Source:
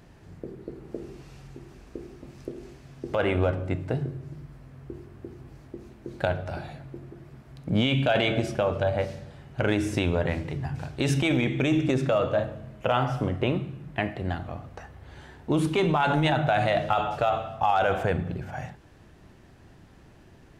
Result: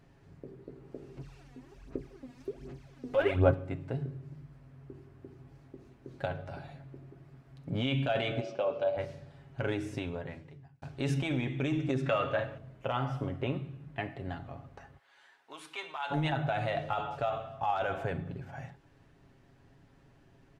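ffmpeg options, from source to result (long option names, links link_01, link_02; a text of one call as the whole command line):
ffmpeg -i in.wav -filter_complex "[0:a]asettb=1/sr,asplit=3[link_01][link_02][link_03];[link_01]atrim=end=1.174[link_04];[link_02]atrim=start=1.17:end=3.54,asetpts=PTS-STARTPTS,afade=type=in:duration=0.004:curve=qsin,afade=type=out:start_time=2.366:duration=0.004:curve=qsin,aphaser=in_gain=1:out_gain=1:delay=4.2:decay=0.71:speed=1.3:type=sinusoidal[link_05];[link_03]atrim=start=3.536[link_06];[link_04][link_05]acrossfade=duration=0.004:curve1=hsin:curve2=qsin[link_07];[link_07][link_06]acrossfade=duration=0.004:curve1=qsin:curve2=hsin,asplit=3[link_08][link_09][link_10];[link_08]afade=type=out:start_time=8.4:duration=0.02[link_11];[link_09]highpass=270,equalizer=frequency=550:width_type=q:width=4:gain=6,equalizer=frequency=1800:width_type=q:width=4:gain=-8,equalizer=frequency=2600:width_type=q:width=4:gain=3,lowpass=frequency=6100:width=0.5412,lowpass=frequency=6100:width=1.3066,afade=type=in:start_time=8.4:duration=0.02,afade=type=out:start_time=8.96:duration=0.02[link_12];[link_10]afade=type=in:start_time=8.96:duration=0.02[link_13];[link_11][link_12][link_13]amix=inputs=3:normalize=0,asettb=1/sr,asplit=3[link_14][link_15][link_16];[link_14]atrim=end=12.064[link_17];[link_15]atrim=start=12.06:end=12.58,asetpts=PTS-STARTPTS,afade=type=in:duration=0.004:curve=qsin,afade=type=out:start_time=0.516:duration=0.004:curve=qsin,equalizer=frequency=2100:width_type=o:width=2:gain=10.5[link_18];[link_16]atrim=start=12.576[link_19];[link_17][link_18]acrossfade=duration=0.004:curve1=hsin:curve2=qsin[link_20];[link_20][link_19]acrossfade=duration=0.004:curve1=qsin:curve2=hsin,asplit=3[link_21][link_22][link_23];[link_21]afade=type=out:start_time=14.97:duration=0.02[link_24];[link_22]highpass=1100,afade=type=in:start_time=14.97:duration=0.02,afade=type=out:start_time=16.1:duration=0.02[link_25];[link_23]afade=type=in:start_time=16.1:duration=0.02[link_26];[link_24][link_25][link_26]amix=inputs=3:normalize=0,asplit=2[link_27][link_28];[link_27]atrim=end=10.82,asetpts=PTS-STARTPTS,afade=type=out:start_time=9.69:duration=1.13[link_29];[link_28]atrim=start=10.82,asetpts=PTS-STARTPTS,afade=type=in:duration=0.004:curve=hsin[link_30];[link_29][link_30]concat=n=2:v=0:a=1,highshelf=frequency=6300:gain=-6,aecho=1:1:7.3:0.47,volume=-9dB" out.wav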